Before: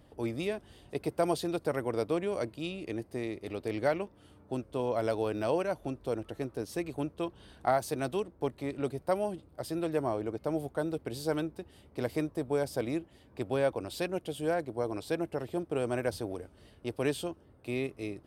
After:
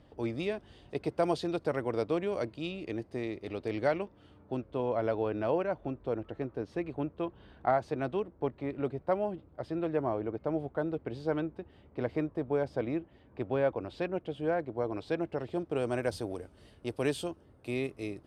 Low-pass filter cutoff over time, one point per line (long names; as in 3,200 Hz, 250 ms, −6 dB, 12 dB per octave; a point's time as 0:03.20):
0:03.91 5,300 Hz
0:05.07 2,400 Hz
0:14.52 2,400 Hz
0:15.47 4,600 Hz
0:16.26 11,000 Hz